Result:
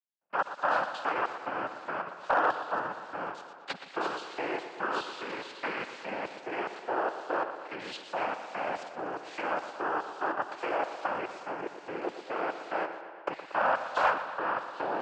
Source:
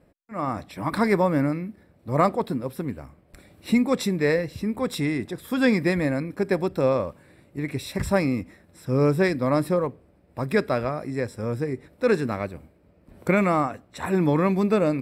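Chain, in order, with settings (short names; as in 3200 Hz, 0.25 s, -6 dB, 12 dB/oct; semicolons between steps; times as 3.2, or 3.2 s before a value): spectral trails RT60 1.72 s; gate with hold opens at -31 dBFS; tilt -3 dB/oct; sample leveller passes 1; in parallel at -2 dB: compressor, threshold -21 dBFS, peak gain reduction 13.5 dB; on the sum: limiter -9.5 dBFS, peak gain reduction 10 dB; level quantiser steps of 12 dB; LFO high-pass square 2.4 Hz 870–4200 Hz; noise vocoder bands 8; hard clip -17 dBFS, distortion -27 dB; air absorption 110 m; on a send: tape echo 0.119 s, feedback 74%, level -10.5 dB, low-pass 4700 Hz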